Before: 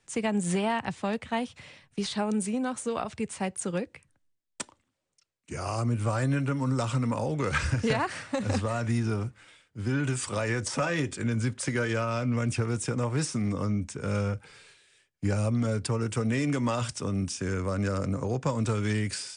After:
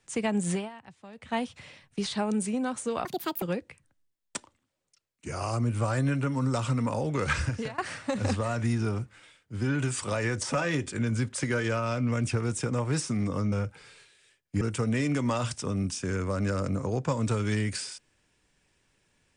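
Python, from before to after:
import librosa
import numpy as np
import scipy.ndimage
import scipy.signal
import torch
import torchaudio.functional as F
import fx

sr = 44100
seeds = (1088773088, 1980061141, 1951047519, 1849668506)

y = fx.edit(x, sr, fx.fade_down_up(start_s=0.5, length_s=0.85, db=-17.5, fade_s=0.2),
    fx.speed_span(start_s=3.05, length_s=0.62, speed=1.67),
    fx.fade_out_to(start_s=7.63, length_s=0.4, floor_db=-22.5),
    fx.cut(start_s=13.77, length_s=0.44),
    fx.cut(start_s=15.3, length_s=0.69), tone=tone)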